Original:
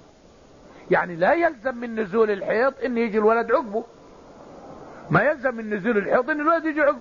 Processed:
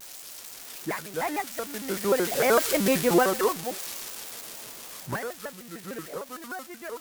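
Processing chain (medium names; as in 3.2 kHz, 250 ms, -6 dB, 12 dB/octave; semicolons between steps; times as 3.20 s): zero-crossing glitches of -14 dBFS; Doppler pass-by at 2.74 s, 15 m/s, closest 6.8 m; vibrato with a chosen wave square 6.6 Hz, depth 250 cents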